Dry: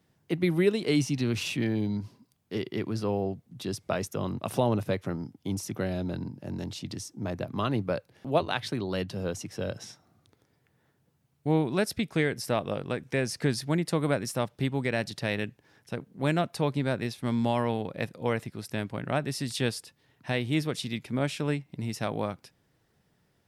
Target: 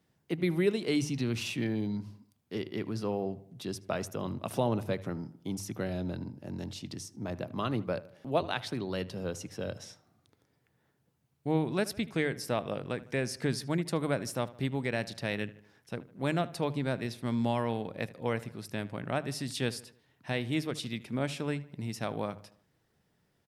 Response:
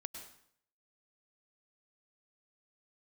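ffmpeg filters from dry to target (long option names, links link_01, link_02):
-filter_complex "[0:a]bandreject=frequency=50:width_type=h:width=6,bandreject=frequency=100:width_type=h:width=6,bandreject=frequency=150:width_type=h:width=6,asplit=2[link_01][link_02];[link_02]adelay=77,lowpass=frequency=3000:poles=1,volume=-18dB,asplit=2[link_03][link_04];[link_04]adelay=77,lowpass=frequency=3000:poles=1,volume=0.51,asplit=2[link_05][link_06];[link_06]adelay=77,lowpass=frequency=3000:poles=1,volume=0.51,asplit=2[link_07][link_08];[link_08]adelay=77,lowpass=frequency=3000:poles=1,volume=0.51[link_09];[link_03][link_05][link_07][link_09]amix=inputs=4:normalize=0[link_10];[link_01][link_10]amix=inputs=2:normalize=0,volume=-3.5dB"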